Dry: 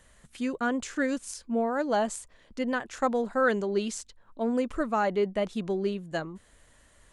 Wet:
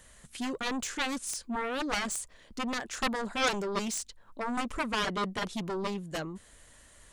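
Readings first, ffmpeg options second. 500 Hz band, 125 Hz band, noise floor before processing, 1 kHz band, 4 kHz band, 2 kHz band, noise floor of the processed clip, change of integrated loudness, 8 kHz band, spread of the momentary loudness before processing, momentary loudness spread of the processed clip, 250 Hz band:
−8.5 dB, −1.5 dB, −60 dBFS, −2.5 dB, +7.5 dB, −0.5 dB, −58 dBFS, −3.5 dB, +4.0 dB, 10 LU, 9 LU, −5.0 dB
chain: -af "highshelf=frequency=3300:gain=6,aeval=exprs='0.237*(cos(1*acos(clip(val(0)/0.237,-1,1)))-cos(1*PI/2))+0.119*(cos(7*acos(clip(val(0)/0.237,-1,1)))-cos(7*PI/2))':channel_layout=same,volume=-7dB"

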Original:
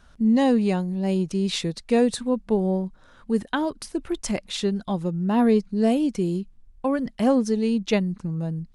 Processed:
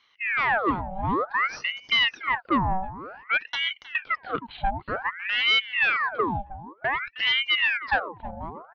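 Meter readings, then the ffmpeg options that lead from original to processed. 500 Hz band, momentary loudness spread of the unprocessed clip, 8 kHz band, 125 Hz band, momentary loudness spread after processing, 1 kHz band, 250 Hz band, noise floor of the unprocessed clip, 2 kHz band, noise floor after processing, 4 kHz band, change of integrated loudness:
−10.5 dB, 9 LU, below −15 dB, −9.0 dB, 12 LU, +5.5 dB, −14.0 dB, −54 dBFS, +14.5 dB, −58 dBFS, +9.5 dB, −1.0 dB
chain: -filter_complex "[0:a]highpass=frequency=420:width_type=q:width=4.7,aemphasis=mode=reproduction:type=bsi,aresample=8000,asoftclip=type=tanh:threshold=-12dB,aresample=44100,asplit=2[link_01][link_02];[link_02]adelay=314,lowpass=frequency=900:poles=1,volume=-13dB,asplit=2[link_03][link_04];[link_04]adelay=314,lowpass=frequency=900:poles=1,volume=0.26,asplit=2[link_05][link_06];[link_06]adelay=314,lowpass=frequency=900:poles=1,volume=0.26[link_07];[link_01][link_03][link_05][link_07]amix=inputs=4:normalize=0,aeval=exprs='val(0)*sin(2*PI*1500*n/s+1500*0.75/0.54*sin(2*PI*0.54*n/s))':channel_layout=same,volume=-3.5dB"

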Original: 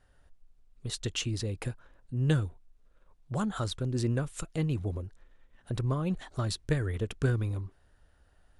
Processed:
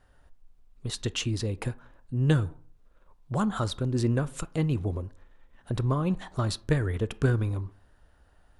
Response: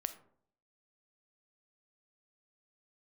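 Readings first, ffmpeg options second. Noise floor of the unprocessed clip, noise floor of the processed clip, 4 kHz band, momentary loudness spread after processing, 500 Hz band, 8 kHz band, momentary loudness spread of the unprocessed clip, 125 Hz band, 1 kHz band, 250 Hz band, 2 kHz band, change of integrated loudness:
−65 dBFS, −61 dBFS, +2.0 dB, 11 LU, +4.0 dB, +1.0 dB, 10 LU, +3.0 dB, +5.5 dB, +4.0 dB, +3.0 dB, +3.5 dB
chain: -filter_complex "[0:a]asplit=2[link_01][link_02];[link_02]equalizer=frequency=250:width_type=o:width=1:gain=5,equalizer=frequency=1000:width_type=o:width=1:gain=9,equalizer=frequency=8000:width_type=o:width=1:gain=-12[link_03];[1:a]atrim=start_sample=2205,asetrate=57330,aresample=44100[link_04];[link_03][link_04]afir=irnorm=-1:irlink=0,volume=-4.5dB[link_05];[link_01][link_05]amix=inputs=2:normalize=0"

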